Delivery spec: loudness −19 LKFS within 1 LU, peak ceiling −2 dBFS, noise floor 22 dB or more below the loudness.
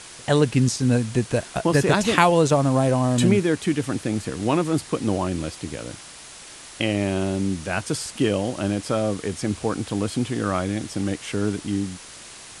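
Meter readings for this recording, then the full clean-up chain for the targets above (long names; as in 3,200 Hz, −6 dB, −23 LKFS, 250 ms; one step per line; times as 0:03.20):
background noise floor −42 dBFS; target noise floor −45 dBFS; integrated loudness −23.0 LKFS; sample peak −1.5 dBFS; target loudness −19.0 LKFS
→ broadband denoise 6 dB, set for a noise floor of −42 dBFS
level +4 dB
brickwall limiter −2 dBFS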